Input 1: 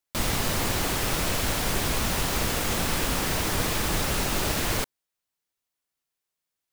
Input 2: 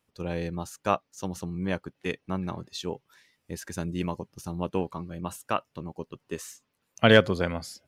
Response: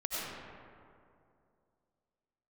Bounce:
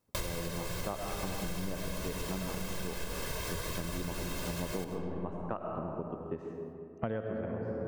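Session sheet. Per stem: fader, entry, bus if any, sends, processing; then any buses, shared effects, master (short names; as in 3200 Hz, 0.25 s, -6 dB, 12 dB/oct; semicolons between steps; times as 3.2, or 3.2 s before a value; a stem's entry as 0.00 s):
-1.0 dB, 0.00 s, send -21.5 dB, comb 1.9 ms, depth 87%; auto duck -11 dB, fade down 0.50 s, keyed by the second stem
-3.5 dB, 0.00 s, send -5 dB, LPF 1000 Hz 12 dB/oct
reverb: on, RT60 2.5 s, pre-delay 55 ms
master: compressor 12:1, threshold -32 dBFS, peak gain reduction 19 dB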